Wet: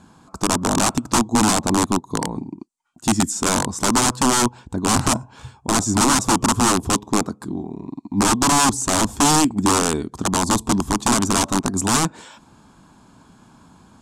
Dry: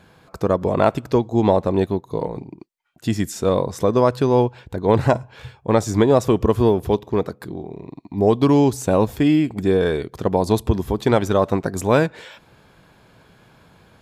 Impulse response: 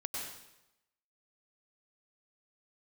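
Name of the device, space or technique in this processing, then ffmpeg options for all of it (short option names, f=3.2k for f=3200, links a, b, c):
overflowing digital effects unit: -af "aeval=exprs='(mod(4.22*val(0)+1,2)-1)/4.22':c=same,lowpass=8.5k,equalizer=f=125:t=o:w=1:g=-4,equalizer=f=250:t=o:w=1:g=10,equalizer=f=500:t=o:w=1:g=-11,equalizer=f=1k:t=o:w=1:g=7,equalizer=f=2k:t=o:w=1:g=-10,equalizer=f=4k:t=o:w=1:g=-4,equalizer=f=8k:t=o:w=1:g=11,volume=1.5dB"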